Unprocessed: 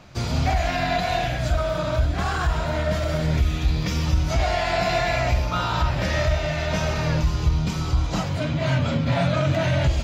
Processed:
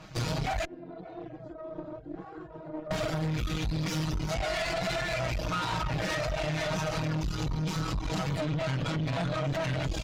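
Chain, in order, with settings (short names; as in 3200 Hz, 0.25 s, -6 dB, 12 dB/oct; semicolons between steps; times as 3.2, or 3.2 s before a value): comb 6.3 ms, depth 95%; limiter -15 dBFS, peak gain reduction 7.5 dB; 0.65–2.91 band-pass 360 Hz, Q 4; compressor, threshold -21 dBFS, peak gain reduction 3.5 dB; reverb removal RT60 0.79 s; tube stage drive 29 dB, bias 0.8; gain +2.5 dB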